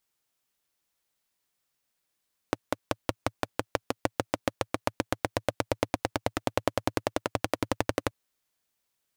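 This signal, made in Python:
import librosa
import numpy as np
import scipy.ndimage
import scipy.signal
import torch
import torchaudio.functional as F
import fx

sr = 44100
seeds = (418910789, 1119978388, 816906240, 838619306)

y = fx.engine_single_rev(sr, seeds[0], length_s=5.58, rpm=600, resonances_hz=(110.0, 300.0, 520.0), end_rpm=1400)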